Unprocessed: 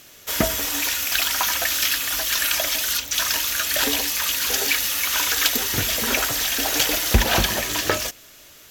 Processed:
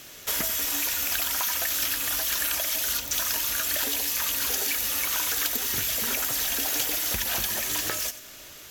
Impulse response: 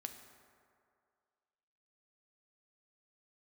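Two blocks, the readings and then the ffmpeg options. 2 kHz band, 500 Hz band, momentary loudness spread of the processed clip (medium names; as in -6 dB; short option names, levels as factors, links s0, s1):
-8.0 dB, -10.0 dB, 2 LU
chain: -filter_complex "[0:a]acrossover=split=1100|7200[s0][s1][s2];[s0]acompressor=threshold=0.00891:ratio=4[s3];[s1]acompressor=threshold=0.0178:ratio=4[s4];[s2]acompressor=threshold=0.0398:ratio=4[s5];[s3][s4][s5]amix=inputs=3:normalize=0,asplit=2[s6][s7];[1:a]atrim=start_sample=2205,adelay=90[s8];[s7][s8]afir=irnorm=-1:irlink=0,volume=0.299[s9];[s6][s9]amix=inputs=2:normalize=0,volume=1.26"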